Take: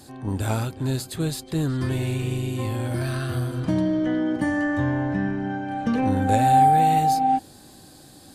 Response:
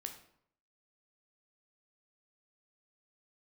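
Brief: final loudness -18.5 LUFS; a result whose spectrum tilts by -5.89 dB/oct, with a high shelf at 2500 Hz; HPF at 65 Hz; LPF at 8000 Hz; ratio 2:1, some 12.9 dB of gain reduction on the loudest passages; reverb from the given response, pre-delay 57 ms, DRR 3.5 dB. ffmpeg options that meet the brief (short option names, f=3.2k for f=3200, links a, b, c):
-filter_complex "[0:a]highpass=65,lowpass=8k,highshelf=f=2.5k:g=4.5,acompressor=threshold=-37dB:ratio=2,asplit=2[a][b];[1:a]atrim=start_sample=2205,adelay=57[c];[b][c]afir=irnorm=-1:irlink=0,volume=-1dB[d];[a][d]amix=inputs=2:normalize=0,volume=13.5dB"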